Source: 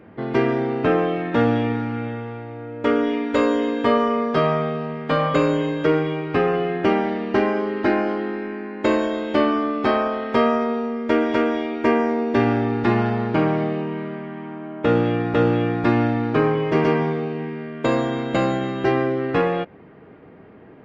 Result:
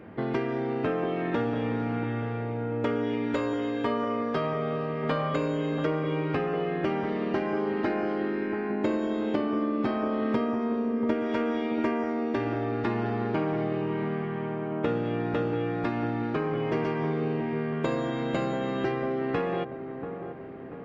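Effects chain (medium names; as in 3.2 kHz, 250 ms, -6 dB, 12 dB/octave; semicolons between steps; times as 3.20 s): 8.70–11.14 s: peaking EQ 170 Hz +8.5 dB 2.2 oct; compression 6:1, threshold -26 dBFS, peak gain reduction 16 dB; feedback echo behind a low-pass 686 ms, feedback 50%, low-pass 1.3 kHz, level -9 dB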